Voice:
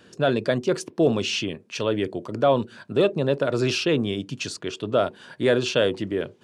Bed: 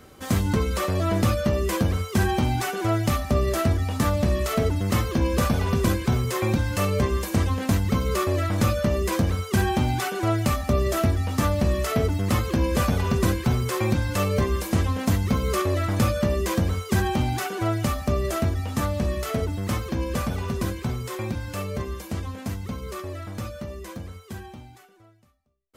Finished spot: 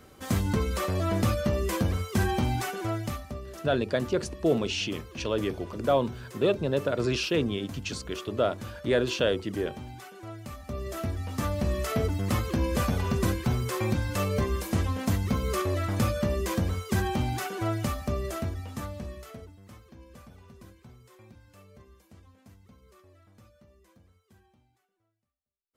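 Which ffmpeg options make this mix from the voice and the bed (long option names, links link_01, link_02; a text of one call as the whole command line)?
ffmpeg -i stem1.wav -i stem2.wav -filter_complex "[0:a]adelay=3450,volume=-4.5dB[link_01];[1:a]volume=10dB,afade=type=out:start_time=2.55:duration=0.86:silence=0.188365,afade=type=in:start_time=10.48:duration=1.44:silence=0.199526,afade=type=out:start_time=17.74:duration=1.82:silence=0.112202[link_02];[link_01][link_02]amix=inputs=2:normalize=0" out.wav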